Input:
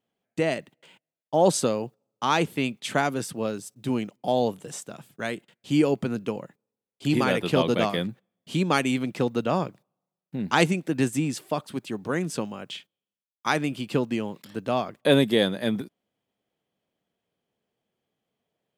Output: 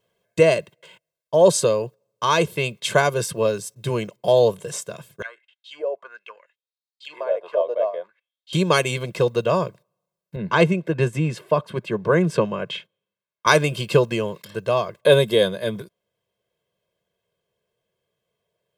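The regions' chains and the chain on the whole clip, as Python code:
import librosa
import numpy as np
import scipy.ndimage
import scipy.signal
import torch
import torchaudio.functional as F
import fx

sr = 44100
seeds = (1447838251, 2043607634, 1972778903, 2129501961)

y = fx.chain(x, sr, fx.highpass(hz=440.0, slope=12),
    fx.auto_wah(base_hz=620.0, top_hz=4400.0, q=4.7, full_db=-23.5, direction='down'), at=(5.22, 8.53))
y = fx.chain(y, sr, fx.highpass(hz=140.0, slope=12),
    fx.bass_treble(bass_db=5, treble_db=-15), at=(10.36, 13.47))
y = y + 0.92 * np.pad(y, (int(1.9 * sr / 1000.0), 0))[:len(y)]
y = fx.dynamic_eq(y, sr, hz=1900.0, q=2.4, threshold_db=-40.0, ratio=4.0, max_db=-4)
y = fx.rider(y, sr, range_db=10, speed_s=2.0)
y = y * librosa.db_to_amplitude(2.5)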